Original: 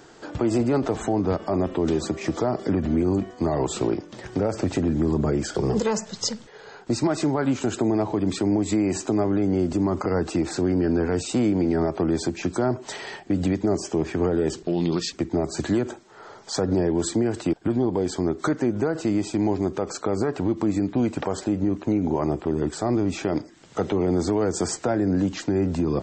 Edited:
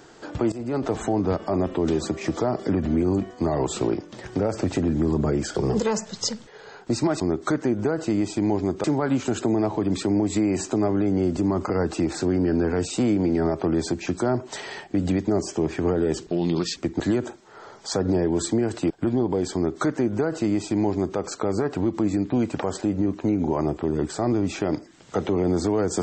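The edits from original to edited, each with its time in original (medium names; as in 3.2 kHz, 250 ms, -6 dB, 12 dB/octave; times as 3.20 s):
0.52–0.92 s: fade in, from -18.5 dB
15.36–15.63 s: delete
18.17–19.81 s: copy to 7.20 s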